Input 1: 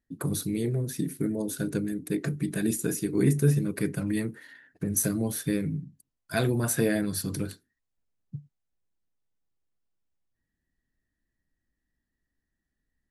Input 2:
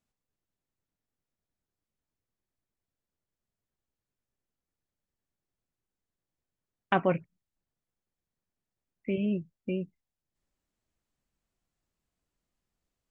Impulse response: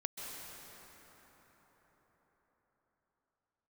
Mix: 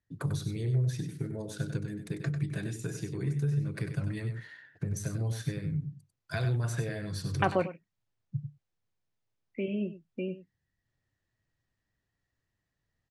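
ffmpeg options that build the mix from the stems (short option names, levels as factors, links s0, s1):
-filter_complex "[0:a]acompressor=threshold=0.0316:ratio=6,lowshelf=f=160:t=q:w=3:g=14,volume=0.944,asplit=2[s0][s1];[s1]volume=0.398[s2];[1:a]adelay=500,volume=0.841,asplit=2[s3][s4];[s4]volume=0.2[s5];[s2][s5]amix=inputs=2:normalize=0,aecho=0:1:96:1[s6];[s0][s3][s6]amix=inputs=3:normalize=0,acrossover=split=160 7300:gain=0.0891 1 0.0708[s7][s8][s9];[s7][s8][s9]amix=inputs=3:normalize=0"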